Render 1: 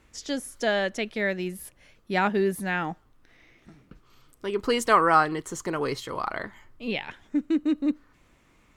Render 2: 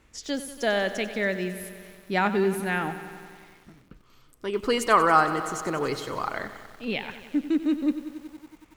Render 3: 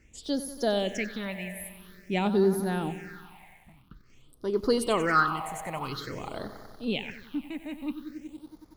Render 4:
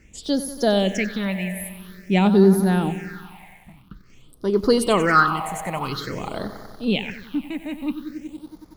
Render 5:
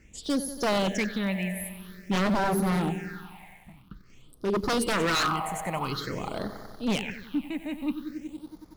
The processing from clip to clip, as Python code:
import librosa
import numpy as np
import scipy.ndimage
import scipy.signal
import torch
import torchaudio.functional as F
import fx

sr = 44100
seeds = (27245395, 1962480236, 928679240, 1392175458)

y1 = fx.echo_crushed(x, sr, ms=93, feedback_pct=80, bits=8, wet_db=-13)
y2 = fx.phaser_stages(y1, sr, stages=6, low_hz=350.0, high_hz=2500.0, hz=0.49, feedback_pct=35)
y3 = fx.peak_eq(y2, sr, hz=190.0, db=6.0, octaves=0.27)
y3 = y3 * librosa.db_to_amplitude(7.0)
y4 = 10.0 ** (-16.5 / 20.0) * (np.abs((y3 / 10.0 ** (-16.5 / 20.0) + 3.0) % 4.0 - 2.0) - 1.0)
y4 = y4 * librosa.db_to_amplitude(-3.5)